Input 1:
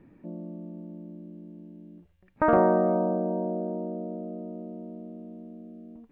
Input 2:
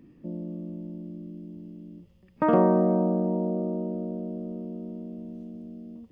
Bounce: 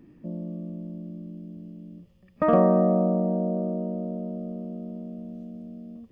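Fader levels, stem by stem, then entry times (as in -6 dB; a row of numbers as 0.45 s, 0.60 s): -6.0 dB, 0.0 dB; 0.00 s, 0.00 s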